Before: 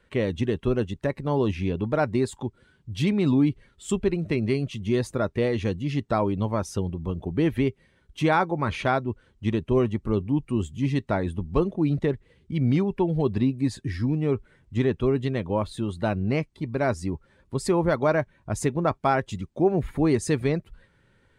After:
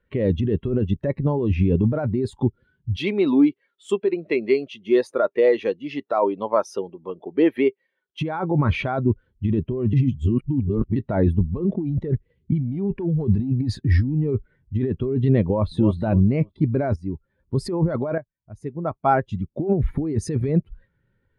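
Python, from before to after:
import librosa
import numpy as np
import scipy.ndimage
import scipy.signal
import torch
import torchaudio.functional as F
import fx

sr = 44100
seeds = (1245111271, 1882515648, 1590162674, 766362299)

y = fx.highpass(x, sr, hz=470.0, slope=12, at=(2.96, 8.21))
y = fx.leveller(y, sr, passes=1, at=(11.6, 14.27))
y = fx.echo_throw(y, sr, start_s=15.42, length_s=0.51, ms=290, feedback_pct=30, wet_db=-13.0)
y = fx.edit(y, sr, fx.reverse_span(start_s=9.93, length_s=1.03),
    fx.fade_in_from(start_s=16.96, length_s=0.67, floor_db=-12.0),
    fx.fade_in_from(start_s=18.18, length_s=1.51, curve='qua', floor_db=-19.0), tone=tone)
y = fx.peak_eq(y, sr, hz=7700.0, db=-9.5, octaves=0.37)
y = fx.over_compress(y, sr, threshold_db=-27.0, ratio=-1.0)
y = fx.spectral_expand(y, sr, expansion=1.5)
y = y * librosa.db_to_amplitude(5.5)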